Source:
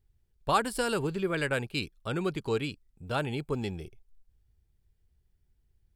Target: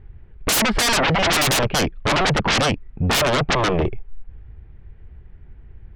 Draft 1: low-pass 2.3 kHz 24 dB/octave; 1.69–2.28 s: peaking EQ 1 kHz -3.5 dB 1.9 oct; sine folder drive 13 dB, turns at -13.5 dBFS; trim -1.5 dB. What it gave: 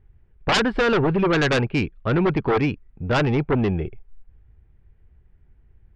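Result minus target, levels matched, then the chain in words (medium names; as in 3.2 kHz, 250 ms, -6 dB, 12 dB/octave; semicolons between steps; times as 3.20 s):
sine folder: distortion -23 dB
low-pass 2.3 kHz 24 dB/octave; 1.69–2.28 s: peaking EQ 1 kHz -3.5 dB 1.9 oct; sine folder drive 25 dB, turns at -13.5 dBFS; trim -1.5 dB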